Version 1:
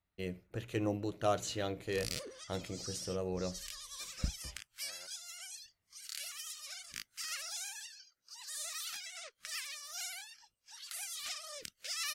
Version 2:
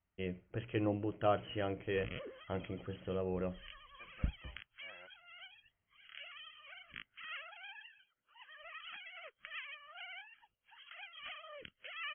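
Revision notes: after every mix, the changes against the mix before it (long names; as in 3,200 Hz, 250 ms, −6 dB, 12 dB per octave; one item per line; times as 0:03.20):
master: add linear-phase brick-wall low-pass 3,300 Hz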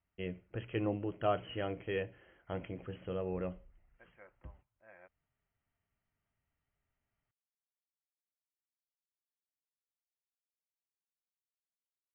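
background: muted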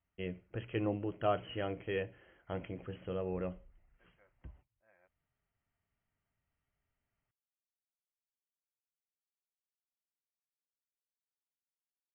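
second voice −11.5 dB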